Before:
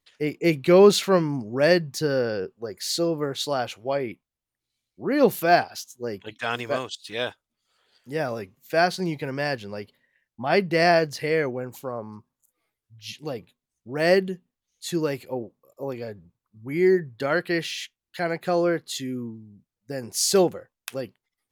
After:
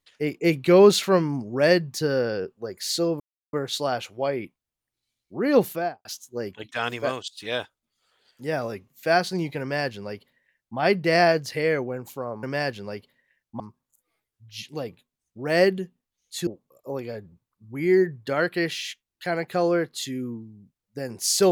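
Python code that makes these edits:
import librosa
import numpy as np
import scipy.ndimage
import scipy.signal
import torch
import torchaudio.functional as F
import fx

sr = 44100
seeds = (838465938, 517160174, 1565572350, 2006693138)

y = fx.studio_fade_out(x, sr, start_s=5.24, length_s=0.48)
y = fx.edit(y, sr, fx.insert_silence(at_s=3.2, length_s=0.33),
    fx.duplicate(start_s=9.28, length_s=1.17, to_s=12.1),
    fx.cut(start_s=14.97, length_s=0.43), tone=tone)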